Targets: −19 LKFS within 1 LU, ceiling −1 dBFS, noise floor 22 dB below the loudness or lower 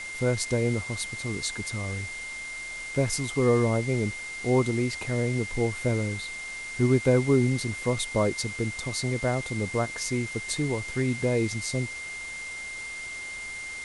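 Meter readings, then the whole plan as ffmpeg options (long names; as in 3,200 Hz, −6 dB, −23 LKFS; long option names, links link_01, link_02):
interfering tone 2,100 Hz; level of the tone −35 dBFS; background noise floor −37 dBFS; target noise floor −50 dBFS; integrated loudness −28.0 LKFS; sample peak −10.5 dBFS; target loudness −19.0 LKFS
→ -af "bandreject=frequency=2100:width=30"
-af "afftdn=noise_reduction=13:noise_floor=-37"
-af "volume=9dB"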